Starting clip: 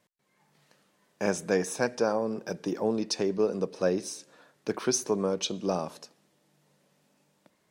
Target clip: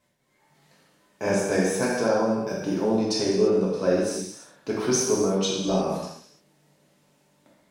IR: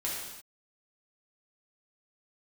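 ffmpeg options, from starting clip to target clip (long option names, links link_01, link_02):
-filter_complex "[0:a]lowshelf=frequency=130:gain=9[link_01];[1:a]atrim=start_sample=2205[link_02];[link_01][link_02]afir=irnorm=-1:irlink=0"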